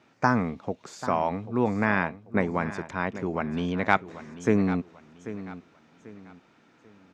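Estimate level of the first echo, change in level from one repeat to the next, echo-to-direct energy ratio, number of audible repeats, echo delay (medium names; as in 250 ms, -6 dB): -14.0 dB, -9.5 dB, -13.5 dB, 3, 790 ms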